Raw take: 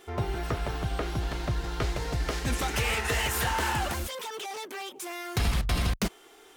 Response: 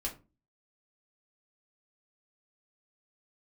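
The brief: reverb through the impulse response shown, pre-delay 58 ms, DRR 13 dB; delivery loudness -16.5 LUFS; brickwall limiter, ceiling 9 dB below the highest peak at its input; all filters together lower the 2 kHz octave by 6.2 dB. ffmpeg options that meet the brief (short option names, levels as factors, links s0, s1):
-filter_complex "[0:a]equalizer=f=2000:t=o:g=-8,alimiter=level_in=1.5:limit=0.0631:level=0:latency=1,volume=0.668,asplit=2[s0][s1];[1:a]atrim=start_sample=2205,adelay=58[s2];[s1][s2]afir=irnorm=-1:irlink=0,volume=0.2[s3];[s0][s3]amix=inputs=2:normalize=0,volume=10"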